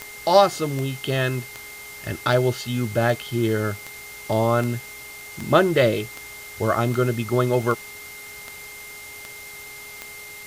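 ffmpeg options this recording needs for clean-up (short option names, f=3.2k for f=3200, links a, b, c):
-af "adeclick=t=4,bandreject=f=412.7:t=h:w=4,bandreject=f=825.4:t=h:w=4,bandreject=f=1.2381k:t=h:w=4,bandreject=f=2.1k:w=30,afwtdn=0.0089"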